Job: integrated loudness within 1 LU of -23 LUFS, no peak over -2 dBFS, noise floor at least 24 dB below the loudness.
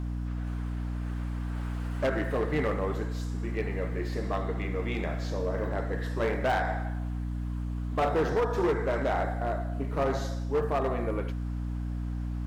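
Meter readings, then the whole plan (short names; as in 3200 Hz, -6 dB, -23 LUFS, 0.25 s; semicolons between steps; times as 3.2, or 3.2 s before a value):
clipped 1.7%; flat tops at -21.5 dBFS; hum 60 Hz; harmonics up to 300 Hz; hum level -30 dBFS; loudness -31.0 LUFS; peak -21.5 dBFS; loudness target -23.0 LUFS
-> clip repair -21.5 dBFS; notches 60/120/180/240/300 Hz; gain +8 dB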